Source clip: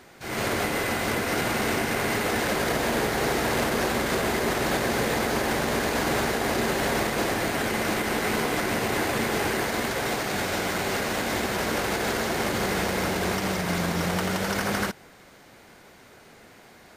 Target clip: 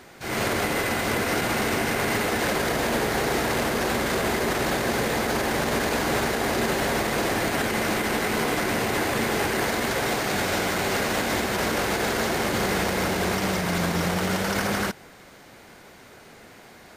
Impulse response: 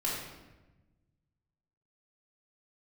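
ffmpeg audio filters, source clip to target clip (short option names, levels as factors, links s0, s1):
-af "alimiter=limit=0.119:level=0:latency=1:release=35,volume=1.41"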